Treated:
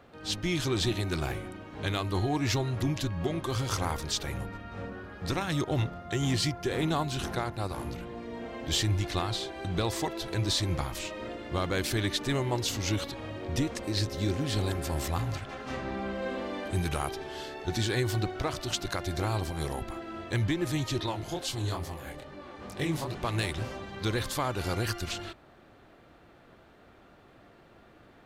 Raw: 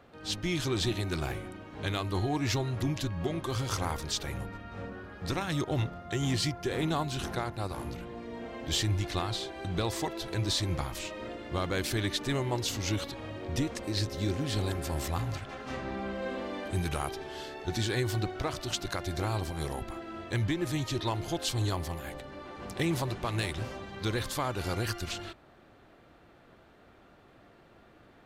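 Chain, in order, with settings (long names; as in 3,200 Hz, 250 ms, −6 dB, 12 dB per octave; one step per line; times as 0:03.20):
0:21.06–0:23.15: chorus effect 2.3 Hz, delay 20 ms, depth 7.8 ms
level +1.5 dB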